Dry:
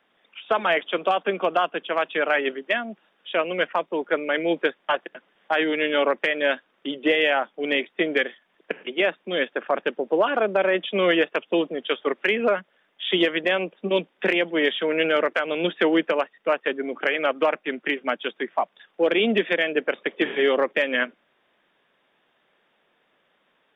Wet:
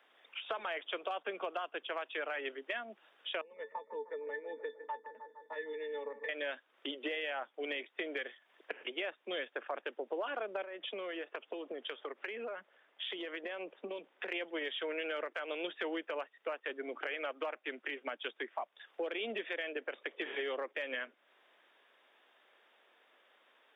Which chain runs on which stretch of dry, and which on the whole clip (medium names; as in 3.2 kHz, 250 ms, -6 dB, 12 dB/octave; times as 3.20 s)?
3.41–6.29 s: pitch-class resonator A, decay 0.11 s + bucket-brigade echo 153 ms, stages 2048, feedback 66%, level -15 dB
10.62–14.32 s: low-pass 2.2 kHz 6 dB/octave + compression 8:1, threshold -30 dBFS
whole clip: Bessel high-pass 430 Hz, order 8; peak limiter -15.5 dBFS; compression 3:1, threshold -40 dBFS